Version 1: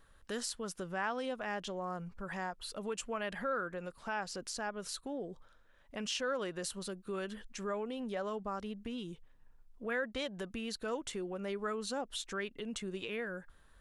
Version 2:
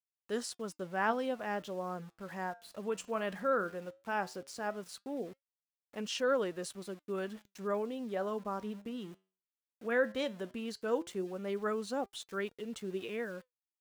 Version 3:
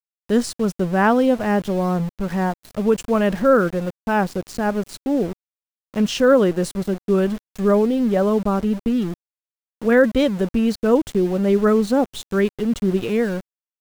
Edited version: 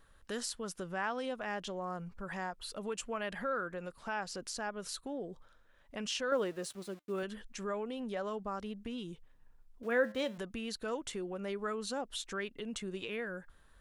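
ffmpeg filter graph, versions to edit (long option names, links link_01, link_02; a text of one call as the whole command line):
ffmpeg -i take0.wav -i take1.wav -filter_complex "[1:a]asplit=2[link_01][link_02];[0:a]asplit=3[link_03][link_04][link_05];[link_03]atrim=end=6.322[link_06];[link_01]atrim=start=6.318:end=7.232[link_07];[link_04]atrim=start=7.228:end=9.832[link_08];[link_02]atrim=start=9.828:end=10.382[link_09];[link_05]atrim=start=10.378[link_10];[link_06][link_07]acrossfade=duration=0.004:curve1=hsin:curve2=hsin[link_11];[link_11][link_08]acrossfade=duration=0.004:curve1=hsin:curve2=hsin[link_12];[link_12][link_09]acrossfade=duration=0.004:curve1=hsin:curve2=hsin[link_13];[link_13][link_10]acrossfade=duration=0.004:curve1=hsin:curve2=hsin" out.wav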